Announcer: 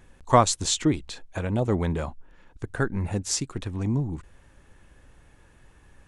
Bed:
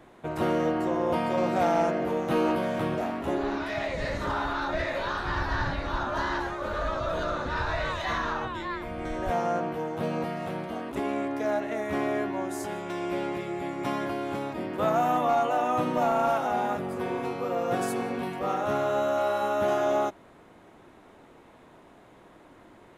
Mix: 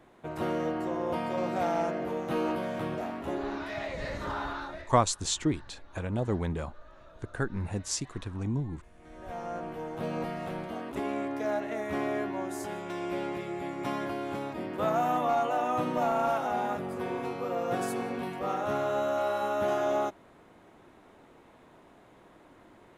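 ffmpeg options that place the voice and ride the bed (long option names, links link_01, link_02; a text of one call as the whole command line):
ffmpeg -i stem1.wav -i stem2.wav -filter_complex "[0:a]adelay=4600,volume=-5.5dB[link_01];[1:a]volume=17.5dB,afade=type=out:start_time=4.48:duration=0.43:silence=0.0944061,afade=type=in:start_time=8.95:duration=1.27:silence=0.0749894[link_02];[link_01][link_02]amix=inputs=2:normalize=0" out.wav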